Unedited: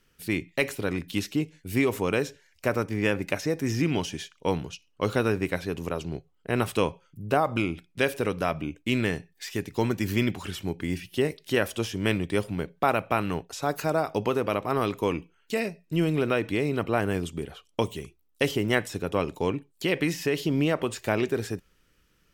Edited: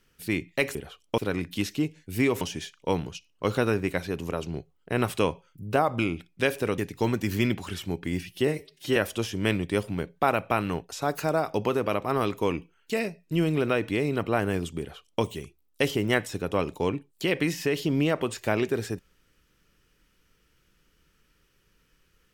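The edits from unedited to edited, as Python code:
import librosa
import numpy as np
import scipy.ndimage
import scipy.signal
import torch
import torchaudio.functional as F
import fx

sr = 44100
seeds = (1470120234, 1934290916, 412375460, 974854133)

y = fx.edit(x, sr, fx.cut(start_s=1.98, length_s=2.01),
    fx.cut(start_s=8.36, length_s=1.19),
    fx.stretch_span(start_s=11.24, length_s=0.33, factor=1.5),
    fx.duplicate(start_s=17.4, length_s=0.43, to_s=0.75), tone=tone)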